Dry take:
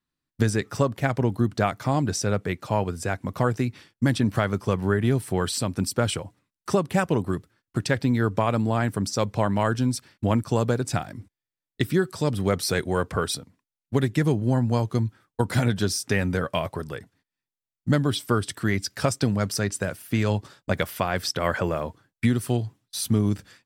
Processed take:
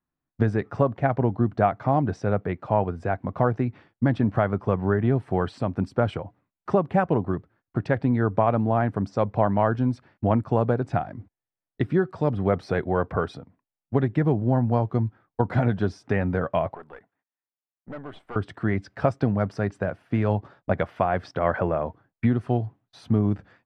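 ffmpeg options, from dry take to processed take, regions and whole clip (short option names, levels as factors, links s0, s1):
-filter_complex "[0:a]asettb=1/sr,asplit=3[s0][s1][s2];[s0]atrim=end=16.744[s3];[s1]atrim=start=16.74:end=18.36,asetpts=PTS-STARTPTS,afade=t=in:d=0.004:c=qsin,afade=t=out:st=1.616:d=0.004:c=qsin,highpass=f=880:p=1,equalizer=f=5300:t=o:w=0.71:g=-12,aeval=exprs='(tanh(44.7*val(0)+0.55)-tanh(0.55))/44.7':c=same[s4];[s2]atrim=start=18.356[s5];[s3][s4]acrossfade=d=0.004:c1=hsin:c2=qsin[s6];[s6][s5]acrossfade=d=0.004:c1=qsin:c2=hsin,lowpass=1600,equalizer=f=720:w=2.7:g=6"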